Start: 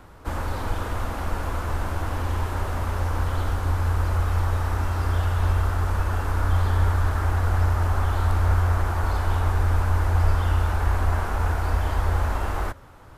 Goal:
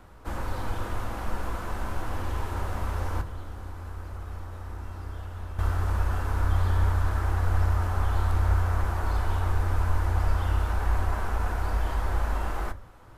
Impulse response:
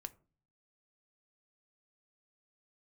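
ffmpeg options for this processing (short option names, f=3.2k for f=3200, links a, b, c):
-filter_complex "[0:a]asettb=1/sr,asplit=3[a][b][c];[a]atrim=end=3.214[d];[b]atrim=start=3.21:end=5.59,asetpts=PTS-STARTPTS,afade=t=in:d=0.004:c=qsin,afade=t=out:st=2.376:d=0.004:c=qsin,acrossover=split=160|490[e][f][g];[e]acompressor=threshold=-34dB:ratio=4[h];[f]acompressor=threshold=-46dB:ratio=4[i];[g]acompressor=threshold=-45dB:ratio=4[j];[h][i][j]amix=inputs=3:normalize=0[k];[c]atrim=start=5.586[l];[d][k]acrossfade=d=0.004:c1=hsin:c2=qsin[m];[m][l]acrossfade=d=0.004:c1=qsin:c2=hsin[n];[1:a]atrim=start_sample=2205[o];[n][o]afir=irnorm=-1:irlink=0"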